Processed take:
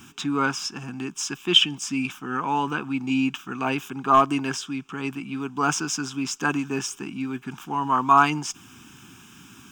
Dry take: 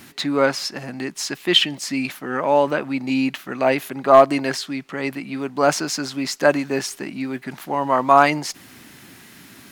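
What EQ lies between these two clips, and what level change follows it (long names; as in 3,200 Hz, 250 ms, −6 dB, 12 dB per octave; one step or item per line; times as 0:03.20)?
phaser with its sweep stopped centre 2,900 Hz, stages 8
0.0 dB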